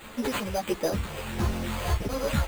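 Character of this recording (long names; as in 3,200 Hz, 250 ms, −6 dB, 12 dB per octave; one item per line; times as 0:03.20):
a quantiser's noise floor 8 bits, dither triangular
phaser sweep stages 4, 1.5 Hz, lowest notch 230–3,700 Hz
aliases and images of a low sample rate 5,500 Hz, jitter 0%
a shimmering, thickened sound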